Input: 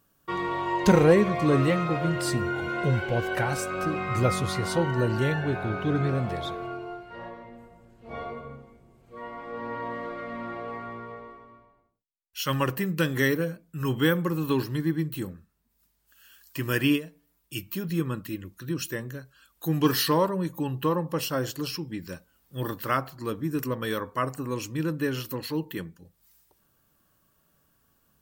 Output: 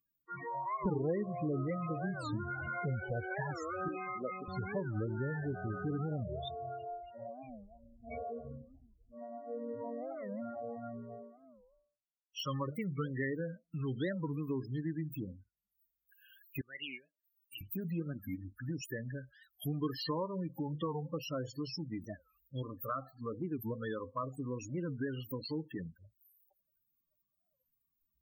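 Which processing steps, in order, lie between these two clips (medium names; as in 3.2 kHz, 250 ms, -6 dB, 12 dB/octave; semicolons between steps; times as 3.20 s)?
loudest bins only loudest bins 16; 22.62–23.36 s: bass shelf 320 Hz -4.5 dB; spectral noise reduction 24 dB; 16.61–17.61 s: differentiator; compression 2.5:1, threshold -39 dBFS, peak gain reduction 16.5 dB; 3.88–4.48 s: high-pass 240 Hz 24 dB/octave; warped record 45 rpm, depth 250 cents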